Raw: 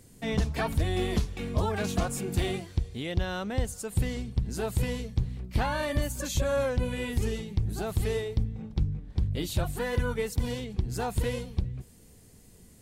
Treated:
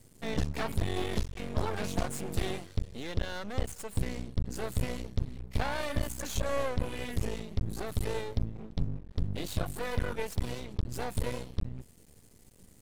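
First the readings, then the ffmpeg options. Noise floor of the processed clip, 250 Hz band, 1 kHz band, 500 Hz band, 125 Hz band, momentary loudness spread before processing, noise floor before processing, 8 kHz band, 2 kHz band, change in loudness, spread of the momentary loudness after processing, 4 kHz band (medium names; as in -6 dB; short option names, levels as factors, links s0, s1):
-58 dBFS, -4.5 dB, -3.5 dB, -5.0 dB, -5.0 dB, 4 LU, -54 dBFS, -4.0 dB, -3.5 dB, -4.5 dB, 5 LU, -3.5 dB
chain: -af "aeval=exprs='max(val(0),0)':c=same"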